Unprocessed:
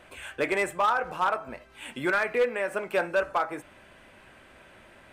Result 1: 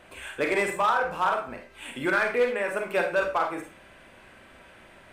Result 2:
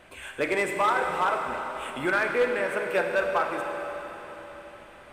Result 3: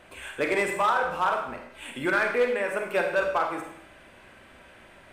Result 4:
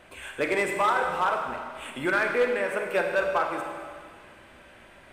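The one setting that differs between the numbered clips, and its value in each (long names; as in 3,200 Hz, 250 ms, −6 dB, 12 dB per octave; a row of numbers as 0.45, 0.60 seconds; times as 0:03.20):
four-comb reverb, RT60: 0.33, 4.2, 0.73, 1.9 seconds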